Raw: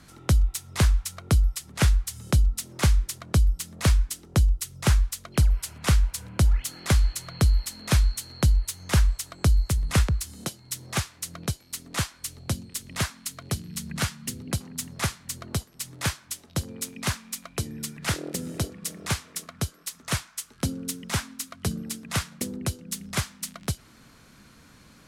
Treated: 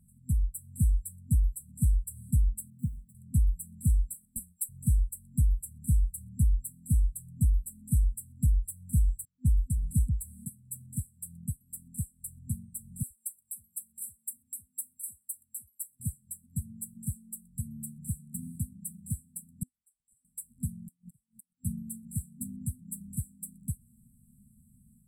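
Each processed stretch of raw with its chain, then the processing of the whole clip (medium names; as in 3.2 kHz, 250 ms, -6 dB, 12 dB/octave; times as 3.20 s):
2.70–3.15 s: median filter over 25 samples + high-pass 130 Hz
4.14–4.69 s: high-pass 330 Hz + treble shelf 5 kHz +11 dB + ring modulator 130 Hz
9.25–9.73 s: gate -35 dBFS, range -30 dB + level-controlled noise filter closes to 1.6 kHz, open at -18.5 dBFS
13.03–16.00 s: pre-emphasis filter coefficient 0.97 + comb 3.3 ms, depth 61% + phase dispersion lows, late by 75 ms, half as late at 430 Hz
19.63–20.25 s: compression, threshold -27 dBFS + two resonant band-passes 2.7 kHz, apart 1.7 oct + ring modulator 220 Hz
20.86–21.64 s: inverted gate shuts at -29 dBFS, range -37 dB + comb 6.2 ms, depth 76%
whole clip: FFT band-reject 250–7600 Hz; level rider gain up to 3.5 dB; trim -8 dB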